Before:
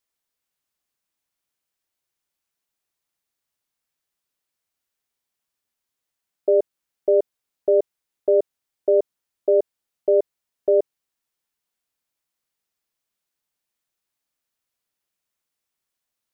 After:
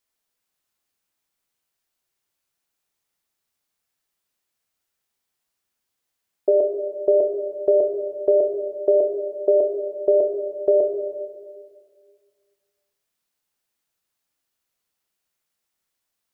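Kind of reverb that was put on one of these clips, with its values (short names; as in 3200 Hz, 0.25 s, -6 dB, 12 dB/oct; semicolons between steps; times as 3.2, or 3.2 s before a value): plate-style reverb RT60 1.9 s, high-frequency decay 0.95×, DRR 3 dB; gain +1.5 dB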